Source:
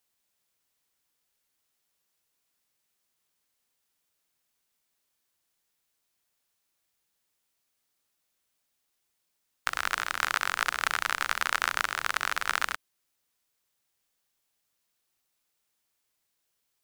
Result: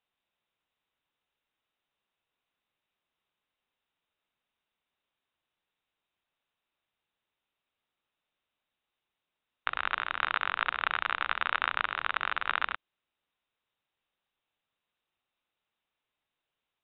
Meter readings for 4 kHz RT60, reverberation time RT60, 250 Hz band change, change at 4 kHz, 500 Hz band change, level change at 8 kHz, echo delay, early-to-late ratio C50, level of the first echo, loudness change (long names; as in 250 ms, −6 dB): no reverb audible, no reverb audible, −2.5 dB, −3.5 dB, −1.5 dB, below −40 dB, no echo audible, no reverb audible, no echo audible, −2.0 dB